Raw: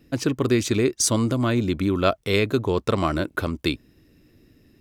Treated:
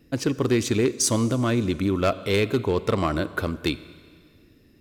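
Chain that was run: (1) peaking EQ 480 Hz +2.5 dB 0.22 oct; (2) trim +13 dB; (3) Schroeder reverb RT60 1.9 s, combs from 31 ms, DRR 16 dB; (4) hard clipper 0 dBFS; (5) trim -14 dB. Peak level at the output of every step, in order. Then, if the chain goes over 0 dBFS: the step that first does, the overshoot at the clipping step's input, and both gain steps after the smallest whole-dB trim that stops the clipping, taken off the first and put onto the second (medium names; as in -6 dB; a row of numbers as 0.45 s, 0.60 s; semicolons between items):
-5.5 dBFS, +7.5 dBFS, +7.5 dBFS, 0.0 dBFS, -14.0 dBFS; step 2, 7.5 dB; step 2 +5 dB, step 5 -6 dB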